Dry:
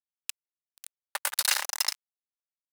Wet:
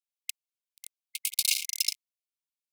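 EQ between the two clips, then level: brick-wall FIR high-pass 2.1 kHz; 0.0 dB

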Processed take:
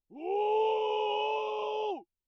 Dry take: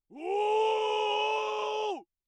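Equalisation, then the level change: Butterworth band-stop 1.6 kHz, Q 1.1; distance through air 220 m; 0.0 dB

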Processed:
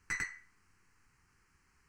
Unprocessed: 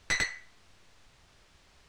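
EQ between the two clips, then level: bass shelf 89 Hz -5.5 dB; static phaser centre 1.5 kHz, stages 4; -5.5 dB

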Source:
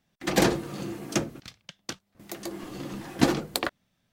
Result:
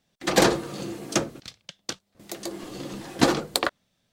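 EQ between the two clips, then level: graphic EQ 500/4000/8000 Hz +5/+5/+5 dB; dynamic bell 1.2 kHz, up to +6 dB, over -39 dBFS, Q 1.1; -1.0 dB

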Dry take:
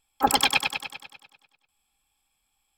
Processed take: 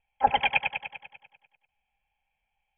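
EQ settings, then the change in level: rippled Chebyshev low-pass 3.2 kHz, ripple 3 dB; static phaser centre 1.2 kHz, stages 6; +1.5 dB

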